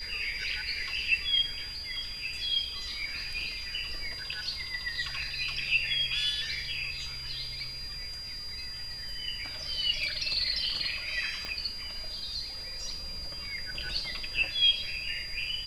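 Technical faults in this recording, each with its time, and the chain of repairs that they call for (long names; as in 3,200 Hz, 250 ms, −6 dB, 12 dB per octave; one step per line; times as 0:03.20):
whistle 4,800 Hz −38 dBFS
0:11.45: click −22 dBFS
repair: click removal
notch filter 4,800 Hz, Q 30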